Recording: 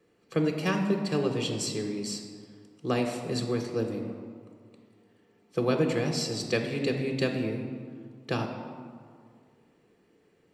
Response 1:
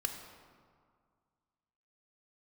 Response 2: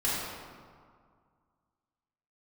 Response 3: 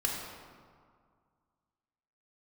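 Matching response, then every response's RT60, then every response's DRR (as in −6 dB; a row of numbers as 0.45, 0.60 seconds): 1; 2.0, 2.0, 2.0 seconds; 4.0, −8.5, −2.0 decibels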